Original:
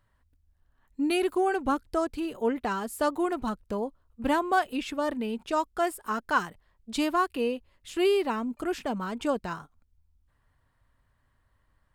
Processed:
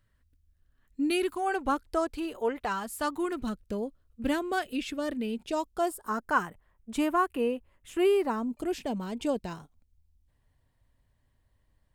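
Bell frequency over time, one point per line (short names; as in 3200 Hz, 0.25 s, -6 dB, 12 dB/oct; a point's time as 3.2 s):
bell -12 dB 0.92 oct
1.2 s 870 Hz
1.62 s 160 Hz
2.35 s 160 Hz
3.48 s 950 Hz
5.31 s 950 Hz
6.45 s 4400 Hz
8.14 s 4400 Hz
8.62 s 1300 Hz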